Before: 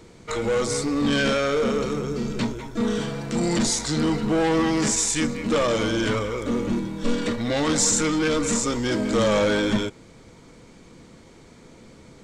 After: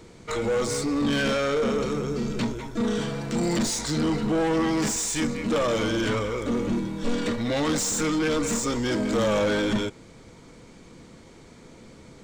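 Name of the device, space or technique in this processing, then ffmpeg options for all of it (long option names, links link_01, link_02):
saturation between pre-emphasis and de-emphasis: -af "highshelf=frequency=3400:gain=9.5,asoftclip=type=tanh:threshold=-17dB,highshelf=frequency=3400:gain=-9.5"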